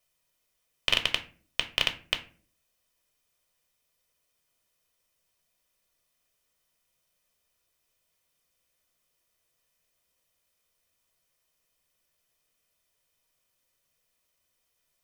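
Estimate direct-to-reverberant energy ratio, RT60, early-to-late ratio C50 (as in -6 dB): 6.0 dB, 0.45 s, 14.0 dB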